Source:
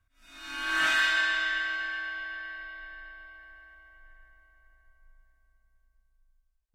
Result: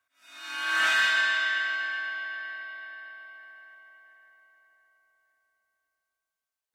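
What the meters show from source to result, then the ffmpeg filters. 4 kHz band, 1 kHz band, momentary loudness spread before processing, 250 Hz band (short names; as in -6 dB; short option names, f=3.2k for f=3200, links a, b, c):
+2.0 dB, +1.5 dB, 22 LU, n/a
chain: -af "highpass=500,asoftclip=type=tanh:threshold=-16dB,volume=2.5dB"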